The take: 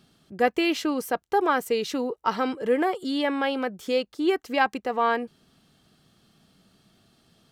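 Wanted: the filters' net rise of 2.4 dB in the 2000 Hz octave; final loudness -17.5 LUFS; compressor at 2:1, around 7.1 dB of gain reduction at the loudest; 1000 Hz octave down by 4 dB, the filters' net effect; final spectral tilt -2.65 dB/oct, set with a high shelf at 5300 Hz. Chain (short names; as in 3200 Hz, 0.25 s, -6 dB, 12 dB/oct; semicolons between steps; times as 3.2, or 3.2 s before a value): bell 1000 Hz -7 dB; bell 2000 Hz +4.5 dB; high shelf 5300 Hz +8.5 dB; compressor 2:1, threshold -31 dBFS; gain +14 dB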